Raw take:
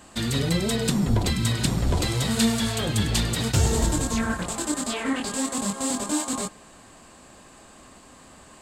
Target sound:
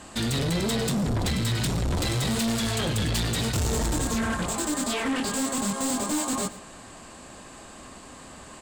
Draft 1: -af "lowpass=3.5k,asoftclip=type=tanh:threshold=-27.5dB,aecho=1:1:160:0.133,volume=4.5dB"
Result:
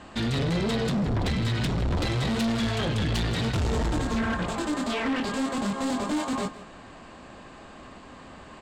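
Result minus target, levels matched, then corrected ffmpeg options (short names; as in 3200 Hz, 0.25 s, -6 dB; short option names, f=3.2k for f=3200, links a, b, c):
8000 Hz band -11.0 dB; echo 45 ms late
-af "lowpass=12k,asoftclip=type=tanh:threshold=-27.5dB,aecho=1:1:115:0.133,volume=4.5dB"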